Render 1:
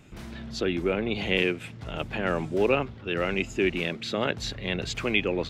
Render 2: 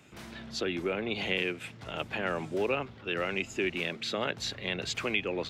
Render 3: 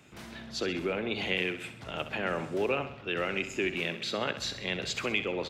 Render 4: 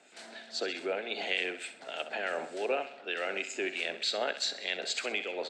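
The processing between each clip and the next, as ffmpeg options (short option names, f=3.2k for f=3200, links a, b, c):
-filter_complex "[0:a]highpass=70,lowshelf=f=340:g=-8,acrossover=split=160[a][b];[b]acompressor=threshold=-29dB:ratio=2[c];[a][c]amix=inputs=2:normalize=0"
-af "aecho=1:1:65|130|195|260|325|390:0.266|0.141|0.0747|0.0396|0.021|0.0111"
-filter_complex "[0:a]acrossover=split=1600[a][b];[a]aeval=exprs='val(0)*(1-0.5/2+0.5/2*cos(2*PI*3.3*n/s))':c=same[c];[b]aeval=exprs='val(0)*(1-0.5/2-0.5/2*cos(2*PI*3.3*n/s))':c=same[d];[c][d]amix=inputs=2:normalize=0,highpass=f=290:w=0.5412,highpass=f=290:w=1.3066,equalizer=f=330:t=q:w=4:g=-6,equalizer=f=690:t=q:w=4:g=7,equalizer=f=1.1k:t=q:w=4:g=-8,equalizer=f=1.6k:t=q:w=4:g=4,equalizer=f=4.3k:t=q:w=4:g=7,equalizer=f=8k:t=q:w=4:g=10,lowpass=f=9.2k:w=0.5412,lowpass=f=9.2k:w=1.3066"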